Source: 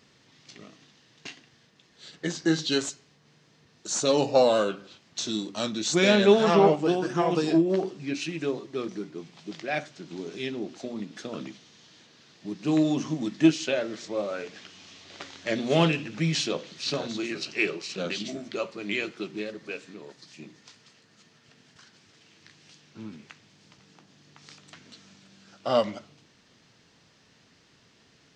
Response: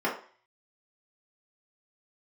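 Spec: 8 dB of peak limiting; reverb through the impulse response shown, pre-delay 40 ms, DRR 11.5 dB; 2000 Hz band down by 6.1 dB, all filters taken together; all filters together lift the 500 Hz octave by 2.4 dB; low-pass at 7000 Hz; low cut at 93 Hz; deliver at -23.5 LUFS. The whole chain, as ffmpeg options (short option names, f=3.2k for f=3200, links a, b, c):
-filter_complex "[0:a]highpass=93,lowpass=7k,equalizer=f=500:t=o:g=3.5,equalizer=f=2k:t=o:g=-8.5,alimiter=limit=-14dB:level=0:latency=1,asplit=2[a][b];[1:a]atrim=start_sample=2205,adelay=40[c];[b][c]afir=irnorm=-1:irlink=0,volume=-23.5dB[d];[a][d]amix=inputs=2:normalize=0,volume=4dB"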